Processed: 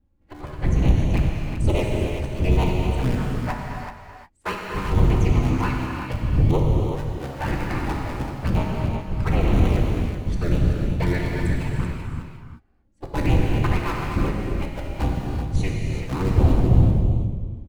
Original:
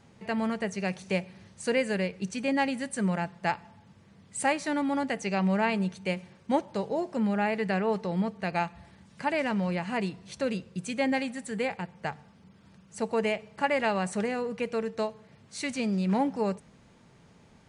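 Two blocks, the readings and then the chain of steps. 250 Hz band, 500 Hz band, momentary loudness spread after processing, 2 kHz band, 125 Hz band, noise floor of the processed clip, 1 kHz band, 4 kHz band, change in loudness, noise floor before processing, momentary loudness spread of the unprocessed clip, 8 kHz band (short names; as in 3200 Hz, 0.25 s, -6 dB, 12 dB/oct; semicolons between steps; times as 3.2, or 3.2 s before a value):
+3.5 dB, +1.0 dB, 11 LU, -0.5 dB, +17.0 dB, -56 dBFS, +1.0 dB, +2.0 dB, +6.5 dB, -58 dBFS, 9 LU, -2.5 dB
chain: cycle switcher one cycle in 3, inverted; wind noise 110 Hz -26 dBFS; gate -25 dBFS, range -28 dB; high shelf 4400 Hz -5.5 dB; in parallel at -10.5 dB: soft clip -20.5 dBFS, distortion -9 dB; on the sum: envelope flanger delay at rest 3.7 ms, full sweep at -16.5 dBFS; on a send: echo 0.383 s -8 dB; on the sum: non-linear reverb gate 0.38 s flat, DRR -0.5 dB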